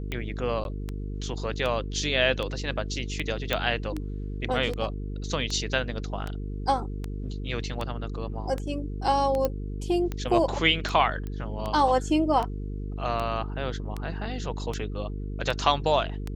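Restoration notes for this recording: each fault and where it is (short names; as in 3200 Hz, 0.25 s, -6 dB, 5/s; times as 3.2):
buzz 50 Hz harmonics 9 -33 dBFS
tick 78 rpm -18 dBFS
0.64–0.65 gap 11 ms
3.53 pop -11 dBFS
9.45 pop -13 dBFS
11.27 pop -23 dBFS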